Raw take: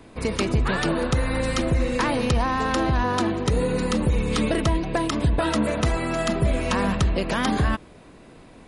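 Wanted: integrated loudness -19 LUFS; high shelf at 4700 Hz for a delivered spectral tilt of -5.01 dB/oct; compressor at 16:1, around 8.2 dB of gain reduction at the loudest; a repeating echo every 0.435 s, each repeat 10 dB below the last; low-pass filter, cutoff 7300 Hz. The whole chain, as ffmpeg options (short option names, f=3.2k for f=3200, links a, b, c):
-af "lowpass=7.3k,highshelf=f=4.7k:g=7,acompressor=threshold=-24dB:ratio=16,aecho=1:1:435|870|1305|1740:0.316|0.101|0.0324|0.0104,volume=9.5dB"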